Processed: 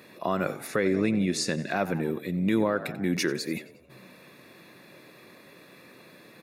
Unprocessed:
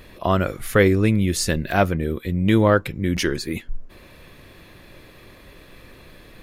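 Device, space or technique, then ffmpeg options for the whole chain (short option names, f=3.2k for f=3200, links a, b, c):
PA system with an anti-feedback notch: -filter_complex "[0:a]asettb=1/sr,asplit=3[a][b][c];[a]atrim=end=0.674[d];[b]atrim=start=0.67:end=1.77,asetpts=PTS-STARTPTS,afade=t=in:d=0.004:c=qsin,afade=t=out:st=1.096:d=0.004:c=qsin,lowpass=7.3k[e];[c]atrim=start=1.766[f];[d][e]acrossfade=d=0.004:c1=hsin:c2=qsin[g];[g][f]acrossfade=d=0.004:c1=qsin:c2=hsin,asplit=5[h][i][j][k][l];[i]adelay=90,afreqshift=58,volume=-18dB[m];[j]adelay=180,afreqshift=116,volume=-23.7dB[n];[k]adelay=270,afreqshift=174,volume=-29.4dB[o];[l]adelay=360,afreqshift=232,volume=-35dB[p];[h][m][n][o][p]amix=inputs=5:normalize=0,highpass=f=150:w=0.5412,highpass=f=150:w=1.3066,asuperstop=centerf=3100:order=4:qfactor=6.5,alimiter=limit=-11dB:level=0:latency=1:release=119,volume=-3.5dB"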